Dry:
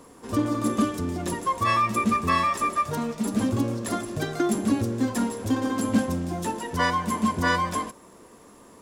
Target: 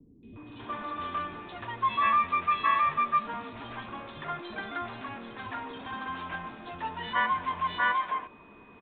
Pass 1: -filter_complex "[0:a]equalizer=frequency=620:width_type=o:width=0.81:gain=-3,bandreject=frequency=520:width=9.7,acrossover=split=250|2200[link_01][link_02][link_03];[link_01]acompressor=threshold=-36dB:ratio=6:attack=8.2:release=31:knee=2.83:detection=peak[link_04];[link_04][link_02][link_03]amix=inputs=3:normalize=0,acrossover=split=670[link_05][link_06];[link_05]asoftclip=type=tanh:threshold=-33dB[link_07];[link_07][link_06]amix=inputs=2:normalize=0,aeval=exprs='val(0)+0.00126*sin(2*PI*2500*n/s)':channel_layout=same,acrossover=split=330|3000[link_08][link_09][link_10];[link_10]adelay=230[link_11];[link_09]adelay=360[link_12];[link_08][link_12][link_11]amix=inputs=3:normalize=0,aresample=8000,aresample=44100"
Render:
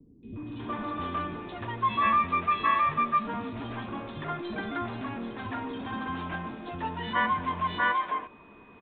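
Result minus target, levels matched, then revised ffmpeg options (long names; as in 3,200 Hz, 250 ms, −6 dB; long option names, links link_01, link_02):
soft clipping: distortion −4 dB
-filter_complex "[0:a]equalizer=frequency=620:width_type=o:width=0.81:gain=-3,bandreject=frequency=520:width=9.7,acrossover=split=250|2200[link_01][link_02][link_03];[link_01]acompressor=threshold=-36dB:ratio=6:attack=8.2:release=31:knee=2.83:detection=peak[link_04];[link_04][link_02][link_03]amix=inputs=3:normalize=0,acrossover=split=670[link_05][link_06];[link_05]asoftclip=type=tanh:threshold=-43.5dB[link_07];[link_07][link_06]amix=inputs=2:normalize=0,aeval=exprs='val(0)+0.00126*sin(2*PI*2500*n/s)':channel_layout=same,acrossover=split=330|3000[link_08][link_09][link_10];[link_10]adelay=230[link_11];[link_09]adelay=360[link_12];[link_08][link_12][link_11]amix=inputs=3:normalize=0,aresample=8000,aresample=44100"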